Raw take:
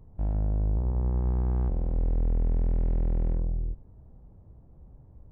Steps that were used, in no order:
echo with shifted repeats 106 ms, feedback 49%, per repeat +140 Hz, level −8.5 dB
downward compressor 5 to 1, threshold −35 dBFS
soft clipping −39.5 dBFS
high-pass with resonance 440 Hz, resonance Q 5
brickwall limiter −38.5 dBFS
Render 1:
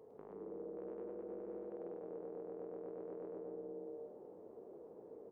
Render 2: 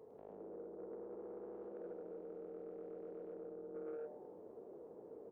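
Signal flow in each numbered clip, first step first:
downward compressor, then soft clipping, then echo with shifted repeats, then high-pass with resonance, then brickwall limiter
downward compressor, then echo with shifted repeats, then brickwall limiter, then high-pass with resonance, then soft clipping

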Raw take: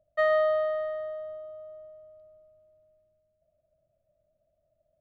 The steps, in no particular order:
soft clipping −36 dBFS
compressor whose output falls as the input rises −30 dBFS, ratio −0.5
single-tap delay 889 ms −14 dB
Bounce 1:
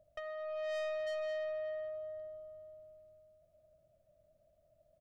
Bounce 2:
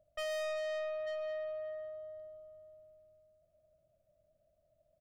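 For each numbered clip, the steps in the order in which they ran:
single-tap delay, then compressor whose output falls as the input rises, then soft clipping
single-tap delay, then soft clipping, then compressor whose output falls as the input rises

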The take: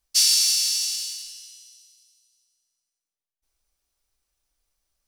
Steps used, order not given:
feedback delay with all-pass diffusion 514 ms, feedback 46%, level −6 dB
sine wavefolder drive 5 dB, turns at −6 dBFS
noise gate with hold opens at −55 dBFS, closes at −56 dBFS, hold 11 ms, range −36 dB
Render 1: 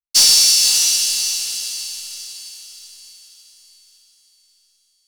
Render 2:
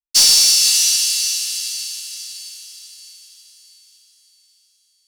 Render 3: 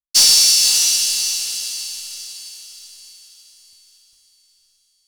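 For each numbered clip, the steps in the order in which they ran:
noise gate with hold, then sine wavefolder, then feedback delay with all-pass diffusion
noise gate with hold, then feedback delay with all-pass diffusion, then sine wavefolder
sine wavefolder, then noise gate with hold, then feedback delay with all-pass diffusion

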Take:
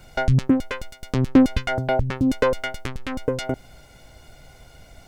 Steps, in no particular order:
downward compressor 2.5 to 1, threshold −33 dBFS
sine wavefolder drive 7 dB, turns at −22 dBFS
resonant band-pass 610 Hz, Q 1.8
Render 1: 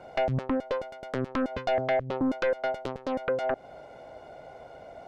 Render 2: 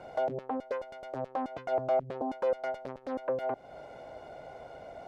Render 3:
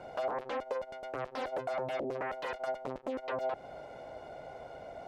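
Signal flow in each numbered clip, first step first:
resonant band-pass, then downward compressor, then sine wavefolder
downward compressor, then sine wavefolder, then resonant band-pass
sine wavefolder, then resonant band-pass, then downward compressor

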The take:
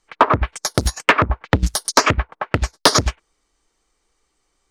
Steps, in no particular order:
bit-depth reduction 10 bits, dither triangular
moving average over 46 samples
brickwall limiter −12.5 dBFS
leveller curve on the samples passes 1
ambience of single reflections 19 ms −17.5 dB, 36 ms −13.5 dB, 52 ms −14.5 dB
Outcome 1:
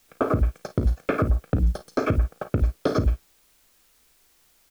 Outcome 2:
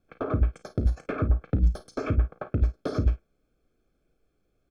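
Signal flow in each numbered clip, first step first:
moving average, then bit-depth reduction, then leveller curve on the samples, then ambience of single reflections, then brickwall limiter
brickwall limiter, then leveller curve on the samples, then ambience of single reflections, then bit-depth reduction, then moving average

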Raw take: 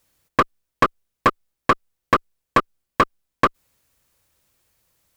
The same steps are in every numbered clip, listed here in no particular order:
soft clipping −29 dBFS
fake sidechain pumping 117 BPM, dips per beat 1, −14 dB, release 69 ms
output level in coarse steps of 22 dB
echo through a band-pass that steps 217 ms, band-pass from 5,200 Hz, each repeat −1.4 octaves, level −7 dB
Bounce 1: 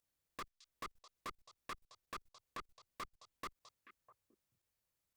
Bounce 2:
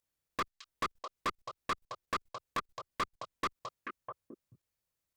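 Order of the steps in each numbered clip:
fake sidechain pumping, then soft clipping, then output level in coarse steps, then echo through a band-pass that steps
fake sidechain pumping, then output level in coarse steps, then echo through a band-pass that steps, then soft clipping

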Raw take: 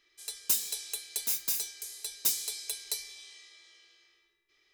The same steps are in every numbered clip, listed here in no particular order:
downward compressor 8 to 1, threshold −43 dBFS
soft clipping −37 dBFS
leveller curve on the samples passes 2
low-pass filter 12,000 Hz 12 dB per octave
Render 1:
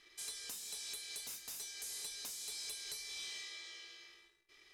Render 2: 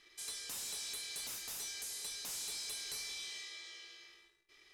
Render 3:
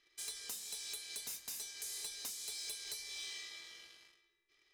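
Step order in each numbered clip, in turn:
downward compressor, then soft clipping, then leveller curve on the samples, then low-pass filter
soft clipping, then downward compressor, then leveller curve on the samples, then low-pass filter
downward compressor, then leveller curve on the samples, then low-pass filter, then soft clipping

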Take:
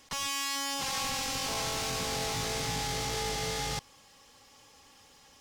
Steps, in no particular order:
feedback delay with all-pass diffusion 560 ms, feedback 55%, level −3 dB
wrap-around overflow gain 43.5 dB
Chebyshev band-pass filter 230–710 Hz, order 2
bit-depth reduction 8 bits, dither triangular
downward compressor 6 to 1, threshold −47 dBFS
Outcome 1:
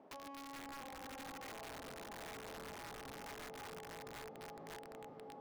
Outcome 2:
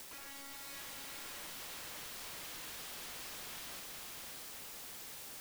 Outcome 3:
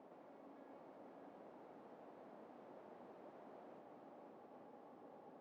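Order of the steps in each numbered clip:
feedback delay with all-pass diffusion, then bit-depth reduction, then Chebyshev band-pass filter, then downward compressor, then wrap-around overflow
Chebyshev band-pass filter, then wrap-around overflow, then bit-depth reduction, then downward compressor, then feedback delay with all-pass diffusion
wrap-around overflow, then feedback delay with all-pass diffusion, then bit-depth reduction, then Chebyshev band-pass filter, then downward compressor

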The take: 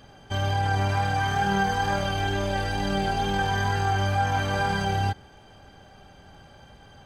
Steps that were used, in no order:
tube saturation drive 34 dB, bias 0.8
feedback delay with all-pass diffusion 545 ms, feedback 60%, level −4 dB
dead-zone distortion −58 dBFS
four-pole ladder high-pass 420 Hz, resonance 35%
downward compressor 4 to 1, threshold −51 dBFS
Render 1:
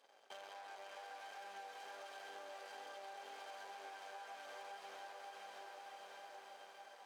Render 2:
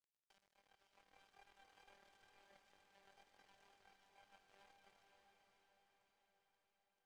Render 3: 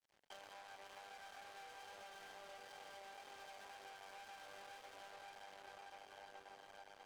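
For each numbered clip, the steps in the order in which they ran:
tube saturation, then feedback delay with all-pass diffusion, then dead-zone distortion, then four-pole ladder high-pass, then downward compressor
downward compressor, then four-pole ladder high-pass, then tube saturation, then dead-zone distortion, then feedback delay with all-pass diffusion
feedback delay with all-pass diffusion, then tube saturation, then four-pole ladder high-pass, then downward compressor, then dead-zone distortion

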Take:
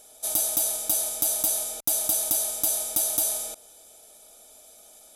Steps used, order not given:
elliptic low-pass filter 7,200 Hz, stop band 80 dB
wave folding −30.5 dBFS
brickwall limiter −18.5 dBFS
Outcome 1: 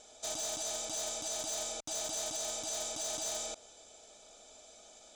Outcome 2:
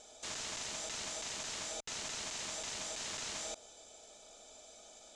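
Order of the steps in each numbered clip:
brickwall limiter, then elliptic low-pass filter, then wave folding
brickwall limiter, then wave folding, then elliptic low-pass filter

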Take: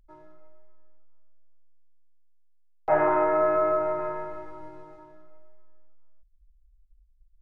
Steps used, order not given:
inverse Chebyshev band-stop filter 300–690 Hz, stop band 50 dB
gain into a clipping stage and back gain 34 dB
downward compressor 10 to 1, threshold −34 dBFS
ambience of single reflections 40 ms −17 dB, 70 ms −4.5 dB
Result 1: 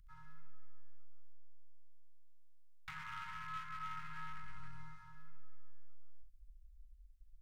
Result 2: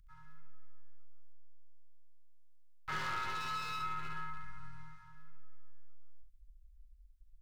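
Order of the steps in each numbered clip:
ambience of single reflections, then downward compressor, then gain into a clipping stage and back, then inverse Chebyshev band-stop filter
inverse Chebyshev band-stop filter, then gain into a clipping stage and back, then ambience of single reflections, then downward compressor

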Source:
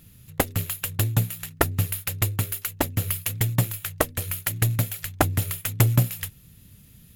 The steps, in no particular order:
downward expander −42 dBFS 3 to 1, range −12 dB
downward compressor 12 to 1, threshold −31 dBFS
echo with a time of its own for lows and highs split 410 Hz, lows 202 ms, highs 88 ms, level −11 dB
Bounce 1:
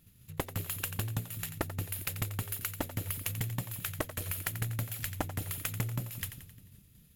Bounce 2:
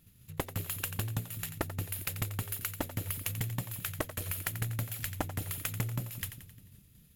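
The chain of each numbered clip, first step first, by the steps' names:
downward expander, then downward compressor, then echo with a time of its own for lows and highs
downward compressor, then downward expander, then echo with a time of its own for lows and highs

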